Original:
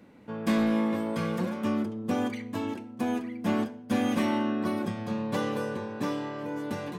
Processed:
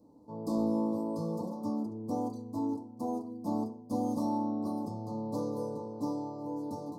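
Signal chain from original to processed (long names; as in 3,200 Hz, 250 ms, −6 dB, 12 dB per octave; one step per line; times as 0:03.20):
elliptic band-stop filter 1,000–4,600 Hz, stop band 40 dB
on a send: convolution reverb RT60 0.35 s, pre-delay 3 ms, DRR 2 dB
on the sum: level −7.5 dB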